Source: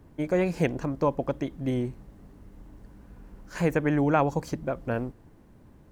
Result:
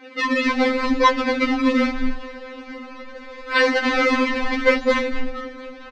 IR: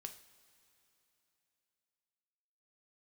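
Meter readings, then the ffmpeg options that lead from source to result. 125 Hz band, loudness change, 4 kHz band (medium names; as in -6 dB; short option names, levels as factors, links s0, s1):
under -15 dB, +8.0 dB, +21.0 dB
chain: -filter_complex "[0:a]aecho=1:1:6:0.92,bandreject=f=134.9:t=h:w=4,bandreject=f=269.8:t=h:w=4,bandreject=f=404.7:t=h:w=4,bandreject=f=539.6:t=h:w=4,bandreject=f=674.5:t=h:w=4,bandreject=f=809.4:t=h:w=4,bandreject=f=944.3:t=h:w=4,bandreject=f=1079.2:t=h:w=4,bandreject=f=1214.1:t=h:w=4,bandreject=f=1349:t=h:w=4,bandreject=f=1483.9:t=h:w=4,bandreject=f=1618.8:t=h:w=4,bandreject=f=1753.7:t=h:w=4,bandreject=f=1888.6:t=h:w=4,bandreject=f=2023.5:t=h:w=4,bandreject=f=2158.4:t=h:w=4,bandreject=f=2293.3:t=h:w=4,bandreject=f=2428.2:t=h:w=4,bandreject=f=2563.1:t=h:w=4,bandreject=f=2698:t=h:w=4,bandreject=f=2832.9:t=h:w=4,bandreject=f=2967.8:t=h:w=4,bandreject=f=3102.7:t=h:w=4,bandreject=f=3237.6:t=h:w=4,bandreject=f=3372.5:t=h:w=4,bandreject=f=3507.4:t=h:w=4,bandreject=f=3642.3:t=h:w=4,bandreject=f=3777.2:t=h:w=4,bandreject=f=3912.1:t=h:w=4,bandreject=f=4047:t=h:w=4,bandreject=f=4181.9:t=h:w=4,bandreject=f=4316.8:t=h:w=4,bandreject=f=4451.7:t=h:w=4,acrossover=split=340|1200[s0][s1][s2];[s0]flanger=delay=1.9:depth=6.7:regen=-83:speed=1.4:shape=sinusoidal[s3];[s1]acompressor=threshold=0.0112:ratio=6[s4];[s2]asoftclip=type=hard:threshold=0.0447[s5];[s3][s4][s5]amix=inputs=3:normalize=0,acrusher=samples=34:mix=1:aa=0.000001:lfo=1:lforange=54.4:lforate=0.77,aeval=exprs='0.2*(cos(1*acos(clip(val(0)/0.2,-1,1)))-cos(1*PI/2))+0.0355*(cos(6*acos(clip(val(0)/0.2,-1,1)))-cos(6*PI/2))':c=same,highpass=f=100:w=0.5412,highpass=f=100:w=1.3066,equalizer=f=120:t=q:w=4:g=10,equalizer=f=700:t=q:w=4:g=-8,equalizer=f=2100:t=q:w=4:g=7,equalizer=f=3200:t=q:w=4:g=-4,lowpass=f=4500:w=0.5412,lowpass=f=4500:w=1.3066,asplit=2[s6][s7];[s7]asplit=7[s8][s9][s10][s11][s12][s13][s14];[s8]adelay=230,afreqshift=-110,volume=0.178[s15];[s9]adelay=460,afreqshift=-220,volume=0.11[s16];[s10]adelay=690,afreqshift=-330,volume=0.0684[s17];[s11]adelay=920,afreqshift=-440,volume=0.0422[s18];[s12]adelay=1150,afreqshift=-550,volume=0.0263[s19];[s13]adelay=1380,afreqshift=-660,volume=0.0162[s20];[s14]adelay=1610,afreqshift=-770,volume=0.0101[s21];[s15][s16][s17][s18][s19][s20][s21]amix=inputs=7:normalize=0[s22];[s6][s22]amix=inputs=2:normalize=0,alimiter=level_in=11.2:limit=0.891:release=50:level=0:latency=1,afftfilt=real='re*3.46*eq(mod(b,12),0)':imag='im*3.46*eq(mod(b,12),0)':win_size=2048:overlap=0.75"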